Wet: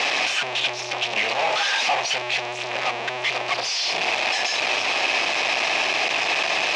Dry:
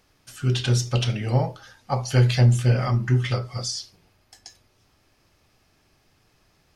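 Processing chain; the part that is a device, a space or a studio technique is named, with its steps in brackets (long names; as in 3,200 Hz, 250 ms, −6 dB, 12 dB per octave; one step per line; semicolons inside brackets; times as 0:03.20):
0:01.17–0:02.22: spectral tilt +2 dB per octave
home computer beeper (sign of each sample alone; loudspeaker in its box 630–5,100 Hz, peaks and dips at 710 Hz +6 dB, 1,400 Hz −8 dB, 2,500 Hz +8 dB, 4,600 Hz −4 dB)
level +5.5 dB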